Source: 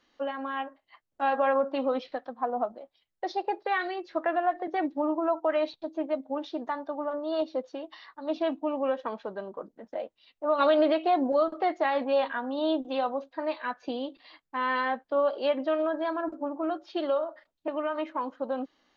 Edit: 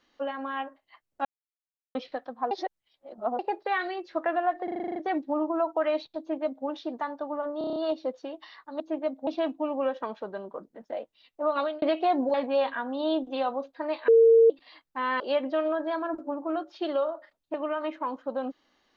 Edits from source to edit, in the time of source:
1.25–1.95 s: mute
2.51–3.39 s: reverse
4.64 s: stutter 0.04 s, 9 plays
5.87–6.34 s: copy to 8.30 s
7.26 s: stutter 0.03 s, 7 plays
10.48–10.85 s: fade out
11.37–11.92 s: delete
13.66–14.08 s: bleep 456 Hz -13.5 dBFS
14.78–15.34 s: delete

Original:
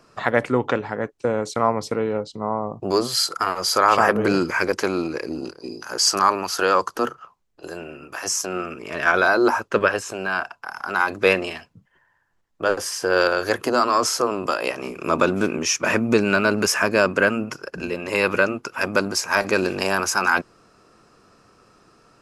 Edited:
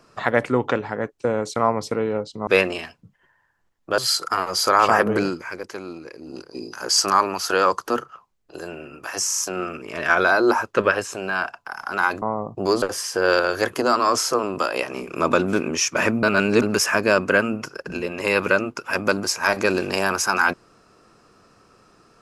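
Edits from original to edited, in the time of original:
2.47–3.07 s: swap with 11.19–12.70 s
4.22–5.60 s: dip -11 dB, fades 0.27 s
8.35 s: stutter 0.04 s, 4 plays
16.11–16.50 s: reverse

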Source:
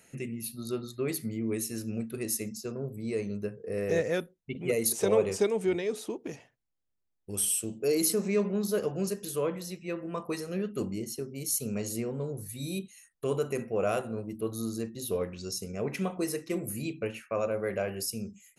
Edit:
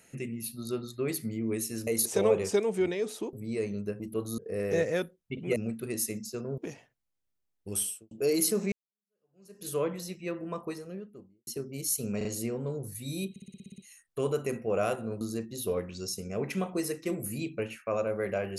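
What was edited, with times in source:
1.87–2.89 s: swap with 4.74–6.20 s
7.38–7.73 s: studio fade out
8.34–9.30 s: fade in exponential
9.91–11.09 s: studio fade out
11.79 s: stutter 0.04 s, 3 plays
12.84 s: stutter 0.06 s, 9 plays
14.27–14.65 s: move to 3.56 s

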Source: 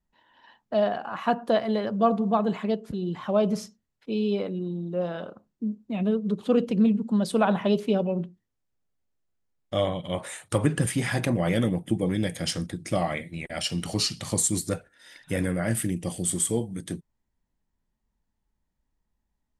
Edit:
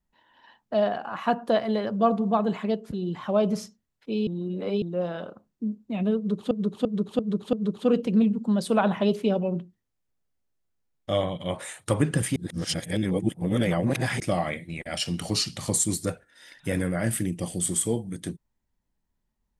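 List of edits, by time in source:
4.27–4.82 s: reverse
6.17–6.51 s: loop, 5 plays
11.00–12.84 s: reverse

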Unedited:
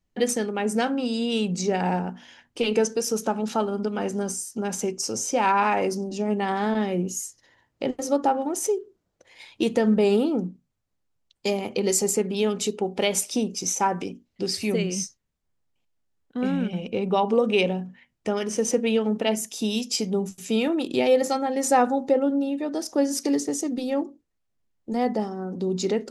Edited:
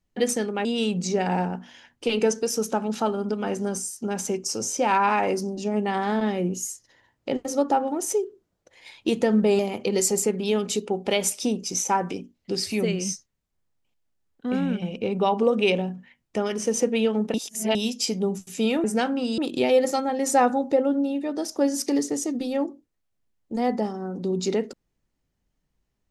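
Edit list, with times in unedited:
0.65–1.19 s: move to 20.75 s
10.13–11.50 s: delete
19.25–19.66 s: reverse

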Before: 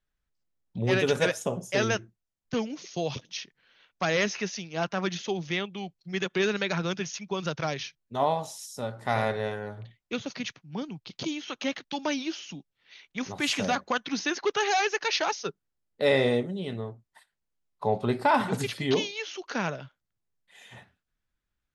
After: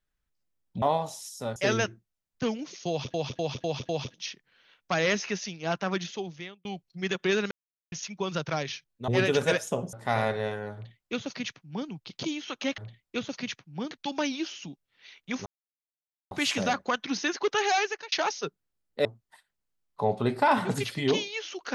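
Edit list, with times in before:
0.82–1.67 s: swap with 8.19–8.93 s
3.00–3.25 s: loop, 5 plays
5.02–5.76 s: fade out
6.62–7.03 s: mute
9.75–10.88 s: copy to 11.78 s
13.33 s: insert silence 0.85 s
14.80–15.14 s: fade out
16.07–16.88 s: delete

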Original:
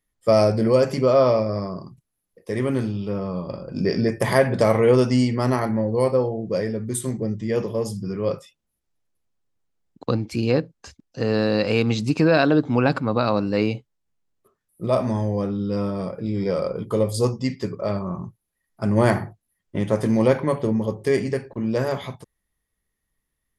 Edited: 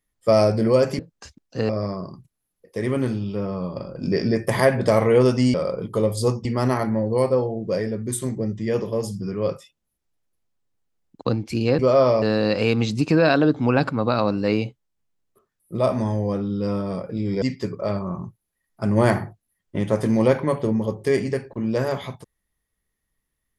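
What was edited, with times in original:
0.99–1.42 s: swap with 10.61–11.31 s
16.51–17.42 s: move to 5.27 s

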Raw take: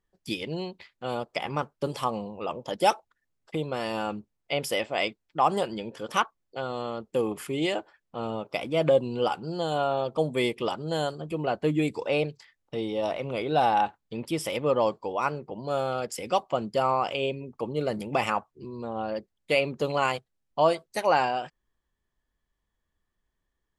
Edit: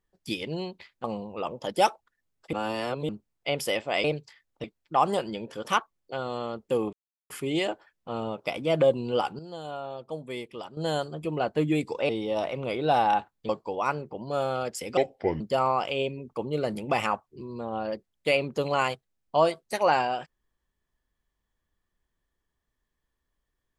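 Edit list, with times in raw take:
1.04–2.08 s: delete
3.57–4.13 s: reverse
7.37 s: insert silence 0.37 s
9.46–10.84 s: gain -10 dB
12.16–12.76 s: move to 5.08 s
14.16–14.86 s: delete
16.34–16.64 s: speed 69%

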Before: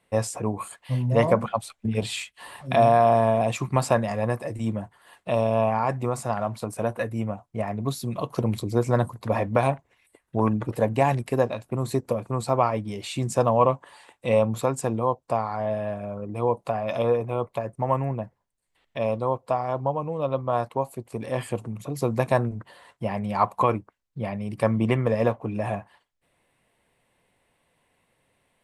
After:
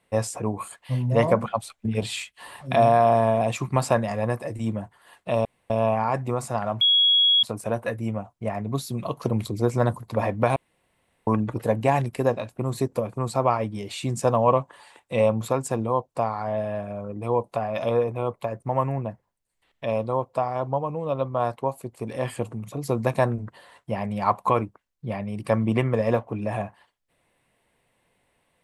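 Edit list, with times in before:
5.45 s: insert room tone 0.25 s
6.56 s: add tone 3.33 kHz -15 dBFS 0.62 s
9.69–10.40 s: room tone

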